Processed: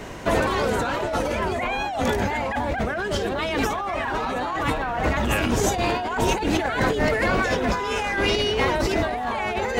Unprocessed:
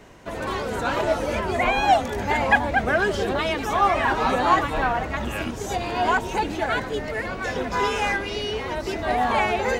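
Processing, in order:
brickwall limiter −15.5 dBFS, peak gain reduction 10.5 dB
compressor whose output falls as the input rises −31 dBFS, ratio −1
level +7 dB

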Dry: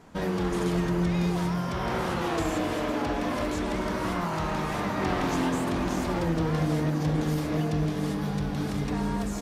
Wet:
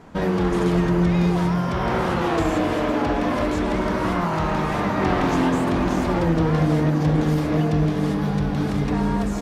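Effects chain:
high-shelf EQ 4,200 Hz −9 dB
level +7 dB

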